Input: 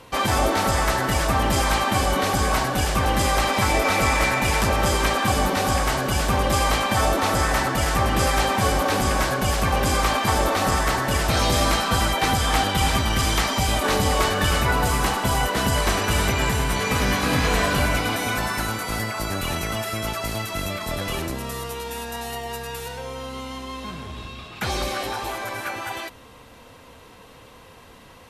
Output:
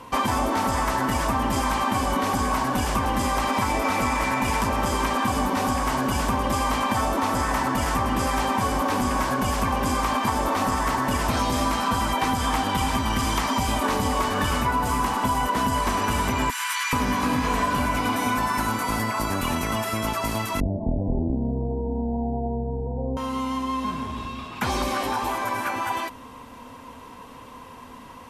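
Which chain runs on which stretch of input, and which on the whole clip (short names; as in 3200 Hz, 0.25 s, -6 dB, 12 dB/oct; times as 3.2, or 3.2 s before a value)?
16.5–16.93 HPF 1400 Hz 24 dB/oct + fast leveller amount 50%
20.6–23.17 elliptic low-pass 780 Hz + tilt -3 dB/oct
whole clip: thirty-one-band EQ 250 Hz +11 dB, 1000 Hz +11 dB, 4000 Hz -4 dB; compressor, threshold -20 dBFS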